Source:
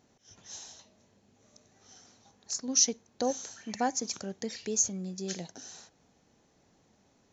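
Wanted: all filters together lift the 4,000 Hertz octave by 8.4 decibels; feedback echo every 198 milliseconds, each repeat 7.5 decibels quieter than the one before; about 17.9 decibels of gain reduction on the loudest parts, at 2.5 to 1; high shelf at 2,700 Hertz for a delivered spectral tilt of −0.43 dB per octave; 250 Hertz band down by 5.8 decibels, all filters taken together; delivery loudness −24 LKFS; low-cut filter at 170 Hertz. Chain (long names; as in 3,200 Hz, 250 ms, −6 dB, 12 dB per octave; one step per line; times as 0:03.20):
high-pass filter 170 Hz
parametric band 250 Hz −5.5 dB
high-shelf EQ 2,700 Hz +7 dB
parametric band 4,000 Hz +4.5 dB
downward compressor 2.5 to 1, threshold −40 dBFS
repeating echo 198 ms, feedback 42%, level −7.5 dB
level +14.5 dB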